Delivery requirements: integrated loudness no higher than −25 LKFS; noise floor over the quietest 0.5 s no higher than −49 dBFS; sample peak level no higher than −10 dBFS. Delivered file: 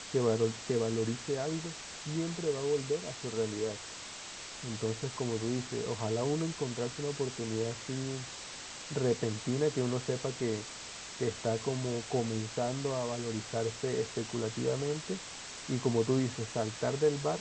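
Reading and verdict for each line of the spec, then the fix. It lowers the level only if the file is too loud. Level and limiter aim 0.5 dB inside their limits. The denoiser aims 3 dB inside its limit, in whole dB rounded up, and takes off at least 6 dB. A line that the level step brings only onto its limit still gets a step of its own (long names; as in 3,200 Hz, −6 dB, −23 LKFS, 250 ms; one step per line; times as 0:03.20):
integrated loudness −34.5 LKFS: in spec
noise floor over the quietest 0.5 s −45 dBFS: out of spec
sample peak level −16.0 dBFS: in spec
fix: broadband denoise 7 dB, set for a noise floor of −45 dBFS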